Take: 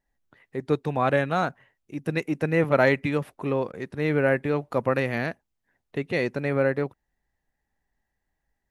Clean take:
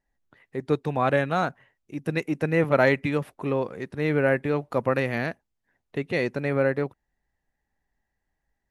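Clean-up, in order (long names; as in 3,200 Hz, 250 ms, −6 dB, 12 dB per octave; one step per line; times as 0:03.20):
repair the gap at 0:03.72, 14 ms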